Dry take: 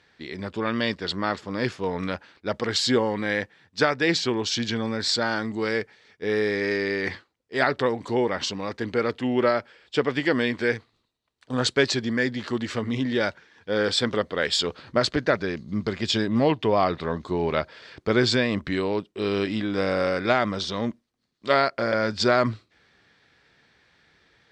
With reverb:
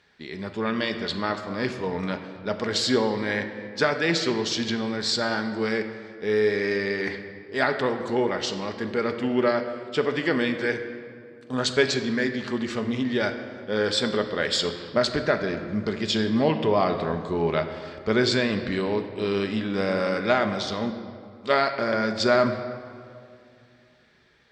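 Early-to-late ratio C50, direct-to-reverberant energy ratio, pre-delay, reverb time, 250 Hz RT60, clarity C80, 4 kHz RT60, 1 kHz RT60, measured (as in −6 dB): 8.5 dB, 6.0 dB, 5 ms, 2.4 s, 2.9 s, 9.5 dB, 1.4 s, 2.2 s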